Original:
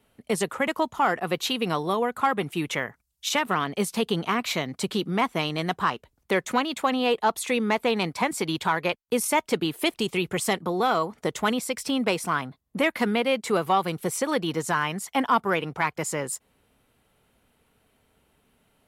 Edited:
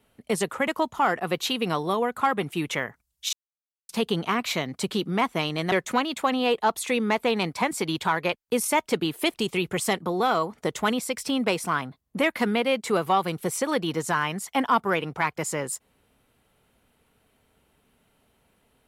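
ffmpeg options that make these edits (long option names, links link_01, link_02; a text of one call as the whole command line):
ffmpeg -i in.wav -filter_complex "[0:a]asplit=4[link_01][link_02][link_03][link_04];[link_01]atrim=end=3.33,asetpts=PTS-STARTPTS,afade=type=out:start_time=3.326:duration=0.004:curve=hsin[link_05];[link_02]atrim=start=3.33:end=3.89,asetpts=PTS-STARTPTS,volume=0[link_06];[link_03]atrim=start=3.89:end=5.722,asetpts=PTS-STARTPTS,afade=type=in:duration=0.004:curve=hsin[link_07];[link_04]atrim=start=6.318[link_08];[link_05][link_06][link_07]concat=n=3:v=0:a=1[link_09];[link_09][link_08]acrossfade=duration=0.004:curve1=hsin:curve2=hsin" out.wav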